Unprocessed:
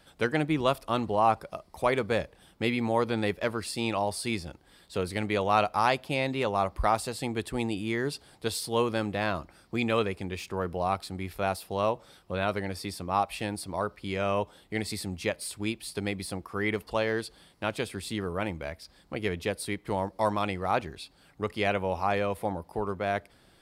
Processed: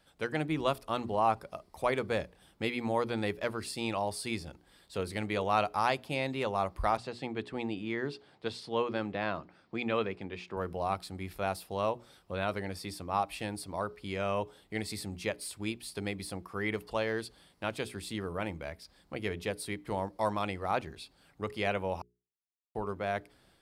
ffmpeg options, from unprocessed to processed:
ffmpeg -i in.wav -filter_complex "[0:a]asettb=1/sr,asplit=3[link_01][link_02][link_03];[link_01]atrim=end=6.974[link_04];[link_02]atrim=start=6.97:end=10.57,asetpts=PTS-STARTPTS,afade=type=in:duration=0.004:curve=qsin,afade=type=out:start_time=3.596:duration=0.004:curve=qsin,highpass=120,lowpass=3700[link_05];[link_03]atrim=start=10.566[link_06];[link_04][link_05]acrossfade=duration=0.004:curve1=hsin:curve2=qsin[link_07];[link_07][link_06]acrossfade=duration=0.004:curve1=qsin:curve2=hsin,asplit=3[link_08][link_09][link_10];[link_08]atrim=end=22.02,asetpts=PTS-STARTPTS,afade=type=out:start_time=22.016:duration=0.004:curve=hsin[link_11];[link_09]atrim=start=22.02:end=22.75,asetpts=PTS-STARTPTS,volume=0[link_12];[link_10]atrim=start=22.75,asetpts=PTS-STARTPTS,afade=type=in:duration=0.004:curve=hsin[link_13];[link_11][link_12][link_13]concat=n=3:v=0:a=1,bandreject=frequency=60:width_type=h:width=6,bandreject=frequency=120:width_type=h:width=6,bandreject=frequency=180:width_type=h:width=6,bandreject=frequency=240:width_type=h:width=6,bandreject=frequency=300:width_type=h:width=6,bandreject=frequency=360:width_type=h:width=6,bandreject=frequency=420:width_type=h:width=6,dynaudnorm=framelen=210:gausssize=3:maxgain=4dB,volume=-8dB" out.wav

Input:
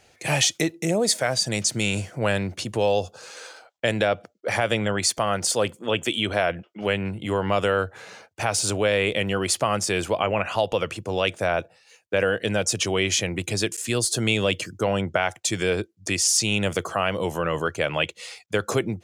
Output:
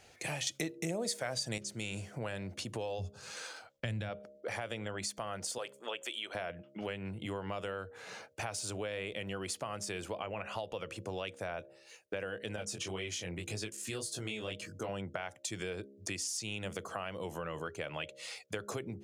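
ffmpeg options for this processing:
ffmpeg -i in.wav -filter_complex "[0:a]asplit=3[link_01][link_02][link_03];[link_01]afade=type=out:start_time=2.98:duration=0.02[link_04];[link_02]asubboost=boost=9.5:cutoff=150,afade=type=in:start_time=2.98:duration=0.02,afade=type=out:start_time=4.08:duration=0.02[link_05];[link_03]afade=type=in:start_time=4.08:duration=0.02[link_06];[link_04][link_05][link_06]amix=inputs=3:normalize=0,asettb=1/sr,asplit=3[link_07][link_08][link_09];[link_07]atrim=end=5.584[link_10];[link_08]atrim=start=5.58:end=6.35,asetpts=PTS-STARTPTS,afade=type=in:duration=0.004:curve=qsin,afade=type=out:start_time=0.766:duration=0.004:curve=qsin,highpass=560[link_11];[link_09]atrim=start=6.346[link_12];[link_10][link_11]acrossfade=duration=0.004:curve1=hsin:curve2=qsin[link_13];[link_13][link_12]acrossfade=duration=0.004:curve1=qsin:curve2=hsin,asettb=1/sr,asplit=3[link_14][link_15][link_16];[link_14]atrim=end=12.564[link_17];[link_15]atrim=start=12.56:end=14.89,asetpts=PTS-STARTPTS,afade=type=in:duration=0.004:curve=qsin,afade=type=out:start_time=2.326:duration=0.004:curve=qsin,flanger=delay=18.5:depth=5:speed=1.9[link_18];[link_16]atrim=start=14.886[link_19];[link_17][link_18]acrossfade=duration=0.004:curve1=hsin:curve2=qsin[link_20];[link_20][link_19]acrossfade=duration=0.004:curve1=qsin:curve2=hsin,asplit=3[link_21][link_22][link_23];[link_21]atrim=end=0.472[link_24];[link_22]atrim=start=0.468:end=1.582,asetpts=PTS-STARTPTS,volume=11.5dB[link_25];[link_23]atrim=start=1.578[link_26];[link_24][link_25]acrossfade=duration=0.004:curve1=hsin:curve2=hsin[link_27];[link_27][link_26]acrossfade=duration=0.004:curve1=hsin:curve2=hsin,bandreject=frequency=68:width_type=h:width=4,bandreject=frequency=136:width_type=h:width=4,bandreject=frequency=204:width_type=h:width=4,bandreject=frequency=272:width_type=h:width=4,bandreject=frequency=340:width_type=h:width=4,bandreject=frequency=408:width_type=h:width=4,bandreject=frequency=476:width_type=h:width=4,bandreject=frequency=544:width_type=h:width=4,bandreject=frequency=612:width_type=h:width=4,acompressor=threshold=-36dB:ratio=4,volume=-2.5dB" out.wav

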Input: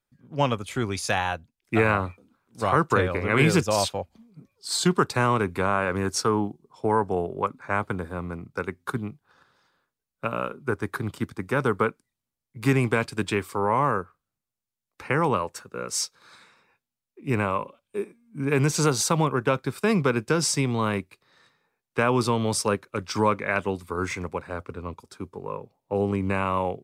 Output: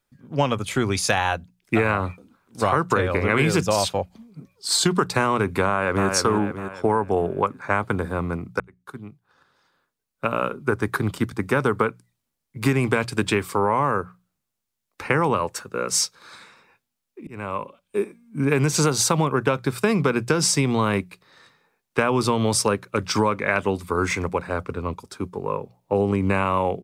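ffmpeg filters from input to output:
ffmpeg -i in.wav -filter_complex "[0:a]asplit=2[link_01][link_02];[link_02]afade=type=in:start_time=5.67:duration=0.01,afade=type=out:start_time=6.08:duration=0.01,aecho=0:1:300|600|900|1200|1500:0.501187|0.225534|0.10149|0.0456707|0.0205518[link_03];[link_01][link_03]amix=inputs=2:normalize=0,asplit=3[link_04][link_05][link_06];[link_04]atrim=end=8.6,asetpts=PTS-STARTPTS,afade=type=out:start_time=8.596:duration=0.004:curve=hsin[link_07];[link_05]atrim=start=8.6:end=17.27,asetpts=PTS-STARTPTS,afade=type=in:duration=2.02,afade=type=out:start_time=8.666:duration=0.004:curve=hsin[link_08];[link_06]atrim=start=17.27,asetpts=PTS-STARTPTS,afade=type=in:duration=0.75[link_09];[link_07][link_08][link_09]concat=n=3:v=0:a=1,bandreject=frequency=60:width_type=h:width=6,bandreject=frequency=120:width_type=h:width=6,bandreject=frequency=180:width_type=h:width=6,acompressor=threshold=-23dB:ratio=6,volume=7dB" out.wav

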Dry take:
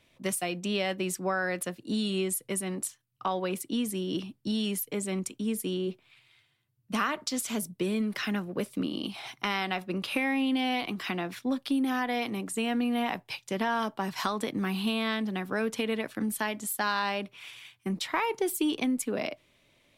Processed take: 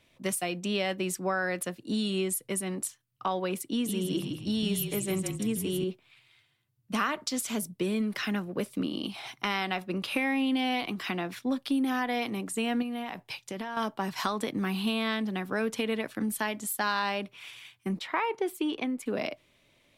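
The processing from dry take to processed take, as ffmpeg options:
ffmpeg -i in.wav -filter_complex "[0:a]asettb=1/sr,asplit=3[link_01][link_02][link_03];[link_01]atrim=end=3.644[link_04];[link_02]atrim=start=3.64:end=5.84,asetpts=PTS-STARTPTS,afade=type=in:duration=0.004:curve=qsin,afade=type=out:start_time=2.196:duration=0.004:curve=qsin,asplit=6[link_05][link_06][link_07][link_08][link_09][link_10];[link_06]adelay=160,afreqshift=-31,volume=-5.5dB[link_11];[link_07]adelay=320,afreqshift=-62,volume=-12.6dB[link_12];[link_08]adelay=480,afreqshift=-93,volume=-19.8dB[link_13];[link_09]adelay=640,afreqshift=-124,volume=-26.9dB[link_14];[link_10]adelay=800,afreqshift=-155,volume=-34dB[link_15];[link_05][link_11][link_12][link_13][link_14][link_15]amix=inputs=6:normalize=0,atrim=end_sample=97020[link_16];[link_03]atrim=start=5.836[link_17];[link_04][link_16]acrossfade=duration=0.004:curve1=hsin:curve2=qsin[link_18];[link_18][link_17]acrossfade=duration=0.004:curve1=qsin:curve2=hsin,asettb=1/sr,asplit=3[link_19][link_20][link_21];[link_19]atrim=end=12.824[link_22];[link_20]atrim=start=12.82:end=13.77,asetpts=PTS-STARTPTS,afade=type=in:duration=0.004:curve=qsin,afade=type=out:start_time=0.946:duration=0.004:curve=qsin,acompressor=threshold=-32dB:ratio=6:attack=3.2:release=140:knee=1:detection=peak[link_23];[link_21]atrim=start=13.766[link_24];[link_22][link_23]acrossfade=duration=0.004:curve1=hsin:curve2=qsin[link_25];[link_25][link_24]acrossfade=duration=0.004:curve1=qsin:curve2=hsin,asettb=1/sr,asplit=3[link_26][link_27][link_28];[link_26]atrim=end=17.994[link_29];[link_27]atrim=start=17.99:end=19.06,asetpts=PTS-STARTPTS,afade=type=in:duration=0.004:curve=qsin,afade=type=out:start_time=1.066:duration=0.004:curve=qsin,bass=frequency=250:gain=-8,treble=frequency=4000:gain=-12[link_30];[link_28]atrim=start=19.056[link_31];[link_29][link_30]acrossfade=duration=0.004:curve1=hsin:curve2=qsin[link_32];[link_32][link_31]acrossfade=duration=0.004:curve1=qsin:curve2=hsin" out.wav

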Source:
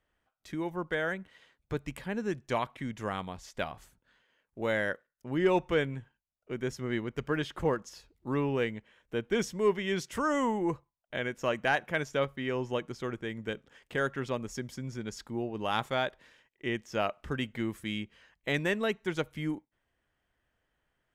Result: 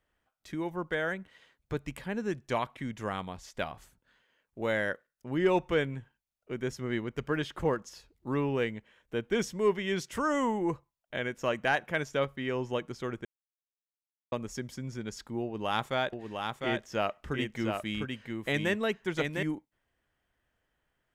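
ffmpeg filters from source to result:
ffmpeg -i in.wav -filter_complex "[0:a]asettb=1/sr,asplit=3[link_01][link_02][link_03];[link_01]atrim=end=15.424[link_04];[link_02]atrim=start=15.42:end=19.43,asetpts=PTS-STARTPTS,afade=type=in:duration=0.004:curve=qsin,afade=type=out:start_time=4.006:duration=0.004:curve=qsin,aecho=1:1:704:0.596,atrim=end_sample=176841[link_05];[link_03]atrim=start=19.426[link_06];[link_04][link_05]acrossfade=duration=0.004:curve1=hsin:curve2=qsin[link_07];[link_07][link_06]acrossfade=duration=0.004:curve1=qsin:curve2=hsin,asplit=3[link_08][link_09][link_10];[link_08]atrim=end=13.25,asetpts=PTS-STARTPTS,afade=type=out:start_time=13.246:duration=0.004:curve=hsin[link_11];[link_09]atrim=start=13.25:end=14.32,asetpts=PTS-STARTPTS,volume=0[link_12];[link_10]atrim=start=14.32,asetpts=PTS-STARTPTS,afade=type=in:duration=0.004:curve=hsin[link_13];[link_11][link_12][link_13]concat=n=3:v=0:a=1" out.wav

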